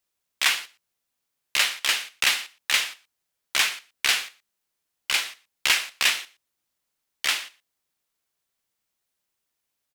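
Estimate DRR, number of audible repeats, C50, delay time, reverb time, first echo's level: none, 1, none, 0.118 s, none, -22.5 dB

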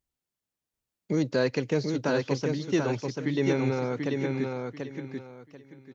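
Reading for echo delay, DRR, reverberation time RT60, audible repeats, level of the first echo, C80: 0.738 s, none, none, 3, -4.0 dB, none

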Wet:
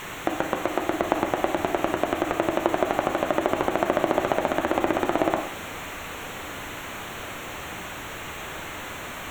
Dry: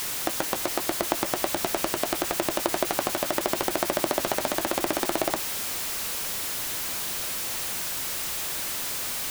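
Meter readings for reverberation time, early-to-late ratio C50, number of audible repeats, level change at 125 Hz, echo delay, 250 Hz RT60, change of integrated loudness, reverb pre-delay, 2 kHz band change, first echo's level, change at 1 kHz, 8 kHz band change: 0.55 s, 7.5 dB, none, +5.0 dB, none, 0.60 s, -0.5 dB, 31 ms, +2.5 dB, none, +4.5 dB, -12.5 dB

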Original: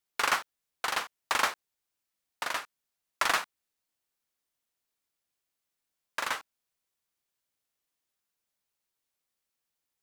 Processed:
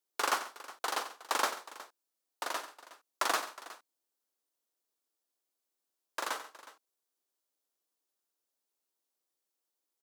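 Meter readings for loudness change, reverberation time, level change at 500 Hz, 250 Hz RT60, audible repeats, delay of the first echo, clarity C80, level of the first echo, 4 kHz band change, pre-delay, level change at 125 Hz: -4.0 dB, none, +0.5 dB, none, 3, 91 ms, none, -13.0 dB, -4.0 dB, none, under -10 dB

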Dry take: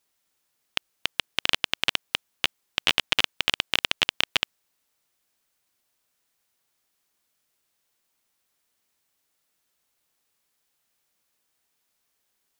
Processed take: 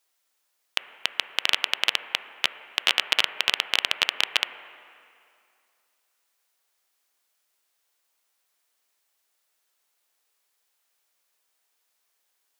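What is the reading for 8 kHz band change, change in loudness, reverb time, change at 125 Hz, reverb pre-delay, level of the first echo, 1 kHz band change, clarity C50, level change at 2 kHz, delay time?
+1.0 dB, +1.0 dB, 2.4 s, under -15 dB, 7 ms, none, +1.0 dB, 12.0 dB, +1.0 dB, none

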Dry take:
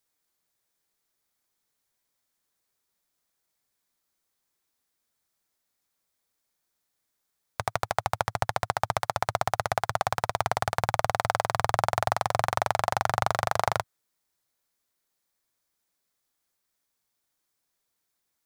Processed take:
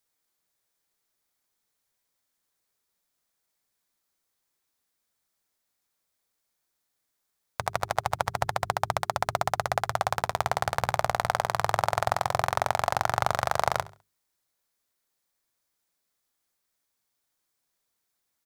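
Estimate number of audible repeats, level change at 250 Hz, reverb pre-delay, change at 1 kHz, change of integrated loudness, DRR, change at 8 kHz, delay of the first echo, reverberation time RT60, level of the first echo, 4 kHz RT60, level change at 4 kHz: 2, -1.0 dB, none, 0.0 dB, 0.0 dB, none, 0.0 dB, 68 ms, none, -19.0 dB, none, 0.0 dB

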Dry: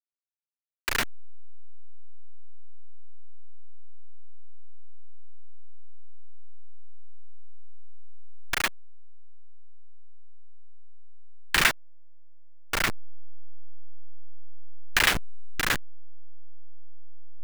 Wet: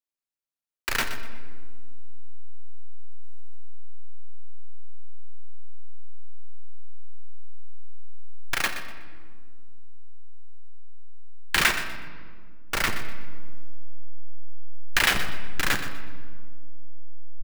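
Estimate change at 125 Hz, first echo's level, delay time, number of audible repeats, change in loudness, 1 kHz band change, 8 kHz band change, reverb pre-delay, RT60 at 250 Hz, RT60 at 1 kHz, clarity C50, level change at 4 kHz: +4.0 dB, -12.0 dB, 0.123 s, 2, 0.0 dB, +1.0 dB, +0.5 dB, 4 ms, 2.8 s, 1.6 s, 7.5 dB, +1.0 dB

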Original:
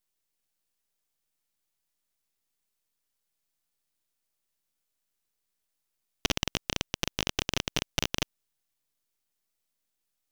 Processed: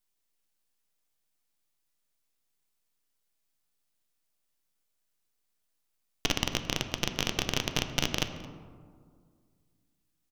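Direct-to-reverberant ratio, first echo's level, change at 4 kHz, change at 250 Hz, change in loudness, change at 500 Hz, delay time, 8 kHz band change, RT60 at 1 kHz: 7.0 dB, -22.5 dB, +0.5 dB, +1.5 dB, +0.5 dB, +1.0 dB, 0.22 s, 0.0 dB, 1.9 s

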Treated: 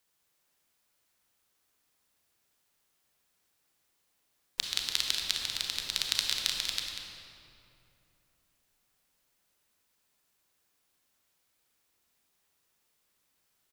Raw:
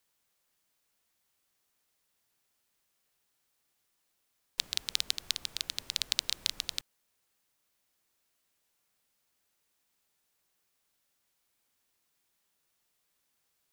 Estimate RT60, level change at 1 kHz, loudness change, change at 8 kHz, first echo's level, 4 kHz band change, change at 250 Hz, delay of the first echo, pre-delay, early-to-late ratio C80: 2.8 s, +5.0 dB, +2.5 dB, +2.0 dB, -9.0 dB, +3.0 dB, +3.5 dB, 0.192 s, 28 ms, 2.0 dB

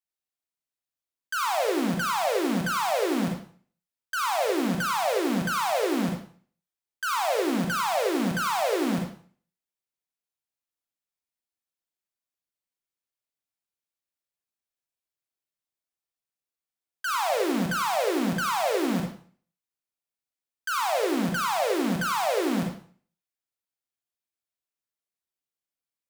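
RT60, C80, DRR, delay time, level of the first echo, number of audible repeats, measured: 0.45 s, 9.5 dB, 1.5 dB, none, none, none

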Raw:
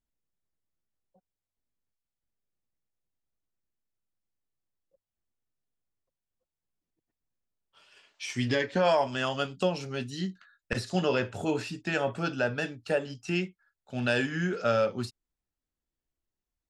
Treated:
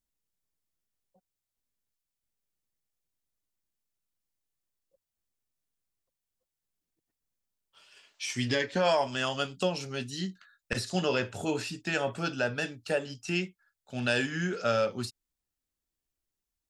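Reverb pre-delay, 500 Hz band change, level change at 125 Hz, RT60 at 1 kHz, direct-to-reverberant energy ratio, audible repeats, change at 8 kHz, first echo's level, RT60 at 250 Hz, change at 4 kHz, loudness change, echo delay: none, -2.0 dB, -2.0 dB, none, none, none, +4.5 dB, none, none, +2.0 dB, -1.0 dB, none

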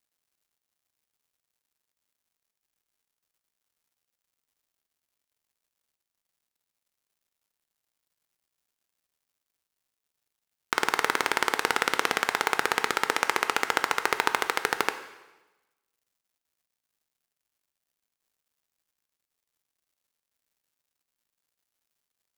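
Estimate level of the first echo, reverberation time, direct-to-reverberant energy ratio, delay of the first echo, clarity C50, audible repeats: none, 1.1 s, 9.0 dB, none, 11.5 dB, none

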